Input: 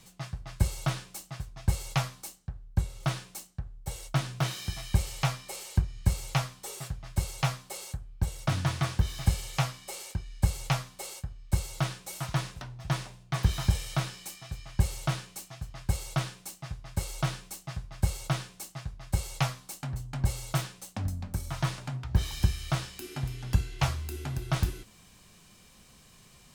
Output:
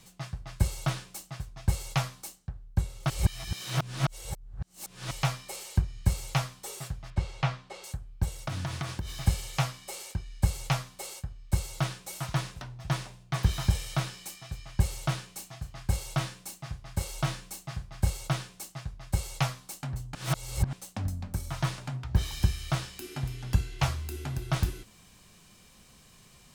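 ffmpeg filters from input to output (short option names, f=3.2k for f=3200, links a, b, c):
-filter_complex "[0:a]asettb=1/sr,asplit=3[a][b][c];[a]atrim=end=7.104[d];[b]atrim=start=7.1:end=7.84,asetpts=PTS-STARTPTS,afade=t=in:d=0.004:c=qsin,afade=t=out:st=0.736:d=0.004:c=qsin,lowpass=3.5k[e];[c]atrim=start=7.836[f];[d][e]acrossfade=d=0.004:c1=hsin:c2=qsin[g];[g][f]acrossfade=d=0.004:c1=qsin:c2=hsin,asettb=1/sr,asplit=3[h][i][j];[h]atrim=end=8.424[k];[i]atrim=start=8.42:end=9.27,asetpts=PTS-STARTPTS,afade=t=in:d=0.004:c=qsin,afade=t=out:st=0.846:d=0.004:c=qsin,acompressor=threshold=-29dB:ratio=6:attack=3.2:release=140:knee=1:detection=peak[l];[j]atrim=start=9.266[m];[k][l]acrossfade=d=0.004:c1=hsin:c2=qsin[n];[n][m]acrossfade=d=0.004:c1=qsin:c2=hsin,asettb=1/sr,asplit=3[o][p][q];[o]atrim=end=15.334[r];[p]atrim=start=15.33:end=18.1,asetpts=PTS-STARTPTS,afade=t=in:d=0.004:c=qsin,afade=t=out:st=2.766:d=0.004:c=qsin,asplit=2[s][t];[t]adelay=34,volume=-9.5dB[u];[s][u]amix=inputs=2:normalize=0,atrim=end_sample=122157[v];[q]atrim=start=18.096[w];[r][v]acrossfade=d=0.004:c1=hsin:c2=qsin[x];[x][w]acrossfade=d=0.004:c1=qsin:c2=hsin,asplit=5[y][z][aa][ab][ac];[y]atrim=end=3.102[ad];[z]atrim=start=3.098:end=5.112,asetpts=PTS-STARTPTS,areverse[ae];[aa]atrim=start=5.108:end=20.152[af];[ab]atrim=start=20.148:end=20.732,asetpts=PTS-STARTPTS,areverse[ag];[ac]atrim=start=20.728[ah];[ad][ae]acrossfade=d=0.004:c1=hsin:c2=hsin[ai];[ai][af]acrossfade=d=0.004:c1=hsin:c2=hsin[aj];[aj][ag]acrossfade=d=0.004:c1=hsin:c2=hsin[ak];[ak][ah]acrossfade=d=0.004:c1=hsin:c2=hsin"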